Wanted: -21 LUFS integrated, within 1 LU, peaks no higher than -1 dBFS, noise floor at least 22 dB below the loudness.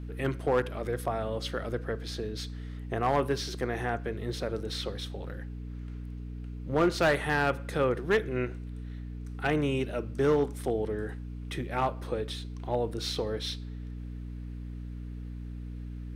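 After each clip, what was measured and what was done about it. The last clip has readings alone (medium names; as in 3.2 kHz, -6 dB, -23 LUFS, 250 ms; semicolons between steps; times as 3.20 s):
clipped samples 0.3%; clipping level -18.5 dBFS; hum 60 Hz; highest harmonic 300 Hz; hum level -37 dBFS; loudness -32.0 LUFS; peak level -18.5 dBFS; loudness target -21.0 LUFS
-> clip repair -18.5 dBFS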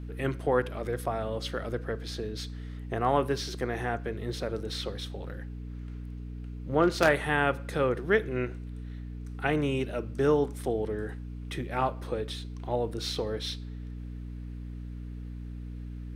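clipped samples 0.0%; hum 60 Hz; highest harmonic 300 Hz; hum level -36 dBFS
-> de-hum 60 Hz, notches 5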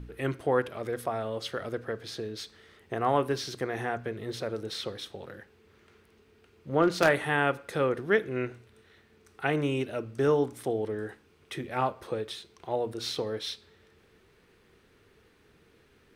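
hum not found; loudness -30.5 LUFS; peak level -9.0 dBFS; loudness target -21.0 LUFS
-> trim +9.5 dB; peak limiter -1 dBFS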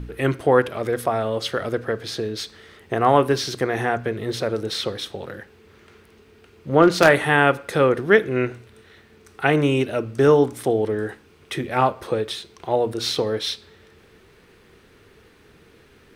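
loudness -21.5 LUFS; peak level -1.0 dBFS; noise floor -53 dBFS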